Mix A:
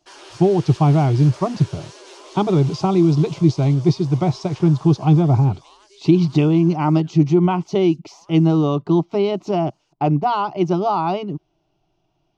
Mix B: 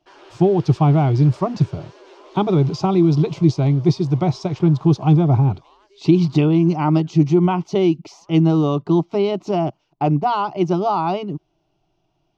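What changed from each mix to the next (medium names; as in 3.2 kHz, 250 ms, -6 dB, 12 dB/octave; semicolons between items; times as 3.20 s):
background: add tape spacing loss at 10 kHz 25 dB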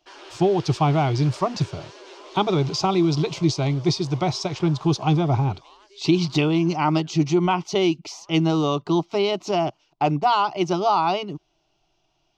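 speech: add peaking EQ 170 Hz -7 dB 2.5 oct; master: add treble shelf 2.1 kHz +9 dB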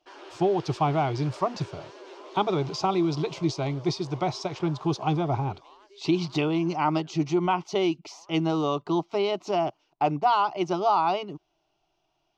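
speech: add bass shelf 310 Hz -9.5 dB; master: add treble shelf 2.1 kHz -9 dB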